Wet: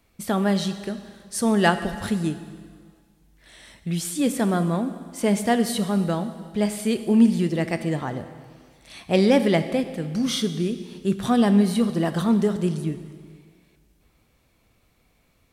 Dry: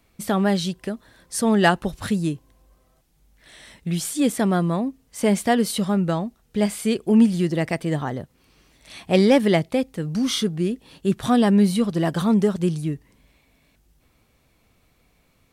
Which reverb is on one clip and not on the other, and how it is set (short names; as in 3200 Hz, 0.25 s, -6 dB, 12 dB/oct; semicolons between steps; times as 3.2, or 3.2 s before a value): plate-style reverb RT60 1.8 s, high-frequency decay 1×, DRR 9.5 dB; gain -2 dB